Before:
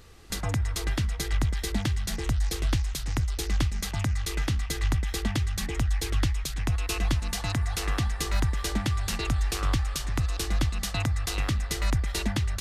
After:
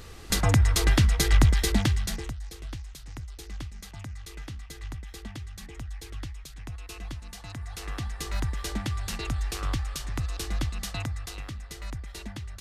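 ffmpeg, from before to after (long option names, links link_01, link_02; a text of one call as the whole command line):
ffmpeg -i in.wav -af "volume=15.5dB,afade=type=out:start_time=1.48:duration=0.62:silence=0.446684,afade=type=out:start_time=2.1:duration=0.25:silence=0.251189,afade=type=in:start_time=7.47:duration=1.02:silence=0.375837,afade=type=out:start_time=10.89:duration=0.55:silence=0.421697" out.wav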